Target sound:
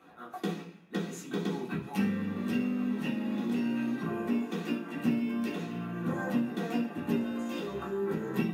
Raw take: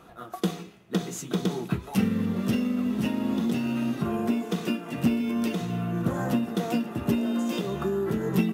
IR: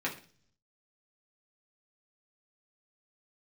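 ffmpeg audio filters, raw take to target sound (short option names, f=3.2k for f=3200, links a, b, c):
-filter_complex "[0:a]lowshelf=f=150:g=-10[a];[1:a]atrim=start_sample=2205[b];[a][b]afir=irnorm=-1:irlink=0,asplit=3[c][d][e];[c]afade=t=out:st=7.22:d=0.02[f];[d]asubboost=boost=8:cutoff=65,afade=t=in:st=7.22:d=0.02,afade=t=out:st=8.01:d=0.02[g];[e]afade=t=in:st=8.01:d=0.02[h];[f][g][h]amix=inputs=3:normalize=0,volume=-8.5dB"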